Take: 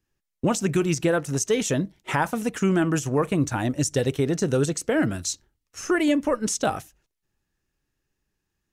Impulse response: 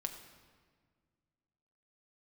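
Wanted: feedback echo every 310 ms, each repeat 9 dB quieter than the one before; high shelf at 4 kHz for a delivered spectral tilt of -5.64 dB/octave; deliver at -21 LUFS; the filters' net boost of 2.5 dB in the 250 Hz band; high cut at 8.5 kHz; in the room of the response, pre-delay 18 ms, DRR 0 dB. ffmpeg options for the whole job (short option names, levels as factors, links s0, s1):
-filter_complex "[0:a]lowpass=8500,equalizer=f=250:t=o:g=3.5,highshelf=f=4000:g=-7.5,aecho=1:1:310|620|930|1240:0.355|0.124|0.0435|0.0152,asplit=2[s0][s1];[1:a]atrim=start_sample=2205,adelay=18[s2];[s1][s2]afir=irnorm=-1:irlink=0,volume=1.06[s3];[s0][s3]amix=inputs=2:normalize=0,volume=0.841"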